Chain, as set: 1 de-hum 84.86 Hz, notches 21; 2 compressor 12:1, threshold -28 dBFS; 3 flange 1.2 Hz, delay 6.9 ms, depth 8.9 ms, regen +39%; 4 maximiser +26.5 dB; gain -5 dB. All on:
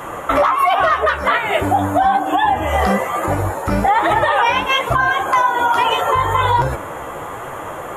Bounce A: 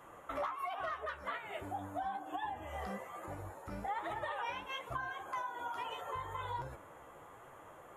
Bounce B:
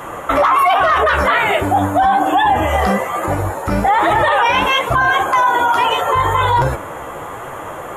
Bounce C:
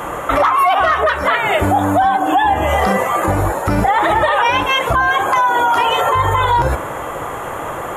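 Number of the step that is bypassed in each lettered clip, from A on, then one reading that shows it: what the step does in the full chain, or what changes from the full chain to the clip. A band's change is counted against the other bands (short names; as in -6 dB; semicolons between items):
4, crest factor change +5.0 dB; 2, mean gain reduction 5.5 dB; 3, momentary loudness spread change -3 LU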